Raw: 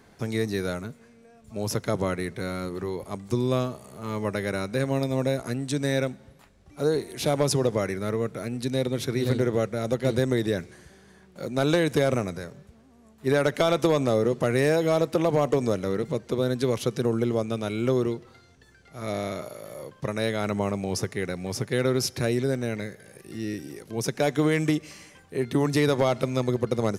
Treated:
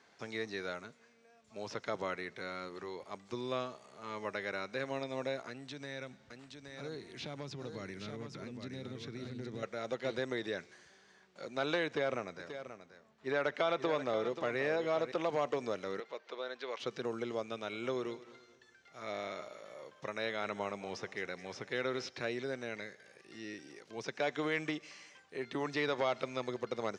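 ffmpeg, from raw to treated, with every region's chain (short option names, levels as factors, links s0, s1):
-filter_complex "[0:a]asettb=1/sr,asplit=3[s0][s1][s2];[s0]atrim=end=5.484[s3];[s1]atrim=start=5.48:end=9.63,asetpts=PTS-STARTPTS,afade=t=in:d=0.004:c=qsin,afade=t=out:st=4.146:d=0.004:c=qsin,asubboost=boost=9:cutoff=240,acompressor=threshold=0.0398:ratio=2.5:attack=3.2:release=140:knee=1:detection=peak,aecho=1:1:820:0.501,atrim=end_sample=183015[s4];[s2]atrim=start=9.626[s5];[s3][s4]acrossfade=d=0.004:c1=hsin:c2=qsin[s6];[s6][s5]acrossfade=d=0.004:c1=qsin:c2=hsin,asettb=1/sr,asplit=3[s7][s8][s9];[s7]atrim=end=11.864[s10];[s8]atrim=start=11.86:end=15.12,asetpts=PTS-STARTPTS,afade=t=in:d=0.004:c=qsin,afade=t=out:st=3.256:d=0.004:c=qsin,lowpass=f=3000:p=1,aecho=1:1:532:0.282,atrim=end_sample=143766[s11];[s9]atrim=start=15.116[s12];[s10][s11]acrossfade=d=0.004:c1=hsin:c2=qsin[s13];[s13][s12]acrossfade=d=0.004:c1=qsin:c2=hsin,asettb=1/sr,asplit=3[s14][s15][s16];[s14]atrim=end=16.004[s17];[s15]atrim=start=16:end=16.8,asetpts=PTS-STARTPTS,afade=t=in:d=0.004:c=qsin,afade=t=out:st=0.796:d=0.004:c=qsin,highpass=550,lowpass=3500,acompressor=mode=upward:threshold=0.00891:ratio=2.5:attack=3.2:release=140:knee=2.83:detection=peak[s18];[s16]atrim=start=16.796[s19];[s17][s18]acrossfade=d=0.004:c1=hsin:c2=qsin[s20];[s20][s19]acrossfade=d=0.004:c1=qsin:c2=hsin,asettb=1/sr,asplit=3[s21][s22][s23];[s21]atrim=end=17.514[s24];[s22]atrim=start=17.51:end=22.09,asetpts=PTS-STARTPTS,afade=t=in:d=0.004:c=qsin,afade=t=out:st=4.576:d=0.004:c=qsin,bandreject=f=4600:w=11,aecho=1:1:214|428|642:0.133|0.048|0.0173,atrim=end_sample=201978[s25];[s23]atrim=start=22.086[s26];[s24][s25]acrossfade=d=0.004:c1=hsin:c2=qsin[s27];[s27][s26]acrossfade=d=0.004:c1=qsin:c2=hsin,highpass=f=990:p=1,acrossover=split=4000[s28][s29];[s29]acompressor=threshold=0.00282:ratio=4:attack=1:release=60[s30];[s28][s30]amix=inputs=2:normalize=0,lowpass=f=6800:w=0.5412,lowpass=f=6800:w=1.3066,volume=0.631"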